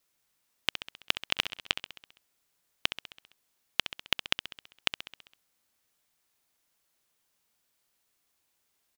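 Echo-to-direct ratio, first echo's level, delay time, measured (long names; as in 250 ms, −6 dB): −9.0 dB, −11.0 dB, 66 ms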